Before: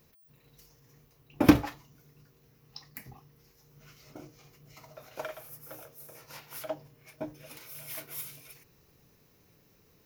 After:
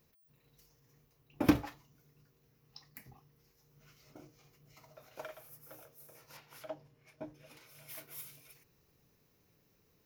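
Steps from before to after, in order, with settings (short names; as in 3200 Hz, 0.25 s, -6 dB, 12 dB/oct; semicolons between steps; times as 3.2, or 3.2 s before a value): 6.37–7.89 high shelf 9600 Hz -11.5 dB; gain -7.5 dB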